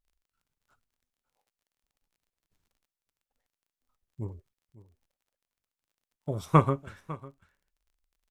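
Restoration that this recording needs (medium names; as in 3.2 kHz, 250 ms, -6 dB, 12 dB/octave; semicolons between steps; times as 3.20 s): de-click; inverse comb 551 ms -18.5 dB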